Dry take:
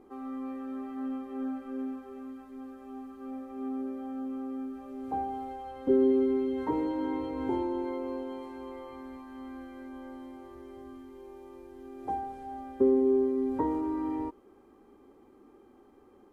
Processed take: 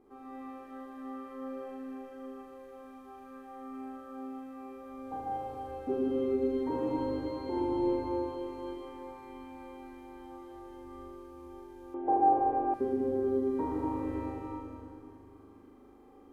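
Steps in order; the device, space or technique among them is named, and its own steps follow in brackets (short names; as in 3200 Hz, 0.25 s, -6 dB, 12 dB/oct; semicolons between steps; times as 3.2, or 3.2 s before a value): tunnel (flutter echo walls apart 6.8 m, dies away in 1.3 s; reverb RT60 2.6 s, pre-delay 0.107 s, DRR -1.5 dB); 11.94–12.74 EQ curve 200 Hz 0 dB, 290 Hz +12 dB, 700 Hz +14 dB, 1700 Hz +1 dB, 2800 Hz 0 dB, 4900 Hz -21 dB; gain -7.5 dB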